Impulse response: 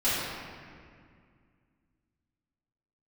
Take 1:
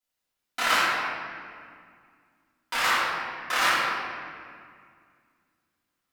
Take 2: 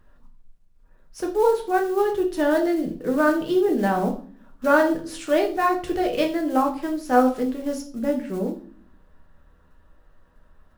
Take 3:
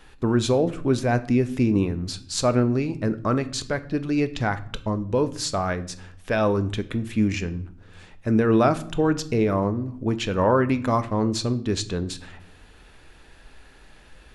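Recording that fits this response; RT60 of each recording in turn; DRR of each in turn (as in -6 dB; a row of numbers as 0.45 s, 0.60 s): 1; 2.1 s, 0.45 s, no single decay rate; -14.0 dB, 1.0 dB, 10.5 dB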